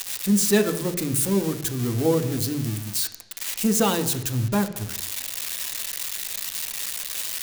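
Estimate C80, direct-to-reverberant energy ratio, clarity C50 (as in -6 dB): 13.5 dB, 6.0 dB, 11.5 dB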